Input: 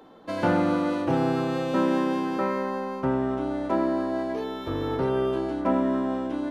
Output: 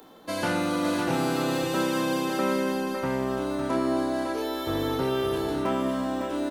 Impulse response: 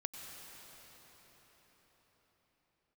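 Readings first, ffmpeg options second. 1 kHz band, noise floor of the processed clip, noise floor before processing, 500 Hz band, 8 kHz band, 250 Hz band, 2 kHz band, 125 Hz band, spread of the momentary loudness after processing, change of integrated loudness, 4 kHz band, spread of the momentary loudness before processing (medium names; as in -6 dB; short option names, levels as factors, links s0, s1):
-1.0 dB, -32 dBFS, -36 dBFS, -1.0 dB, no reading, -1.5 dB, +3.0 dB, -2.0 dB, 3 LU, -1.0 dB, +7.5 dB, 6 LU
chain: -filter_complex "[0:a]aemphasis=mode=production:type=75fm,acrossover=split=1400[s0][s1];[s0]alimiter=limit=0.106:level=0:latency=1[s2];[s1]asplit=2[s3][s4];[s4]adelay=28,volume=0.596[s5];[s3][s5]amix=inputs=2:normalize=0[s6];[s2][s6]amix=inputs=2:normalize=0,aecho=1:1:556:0.531"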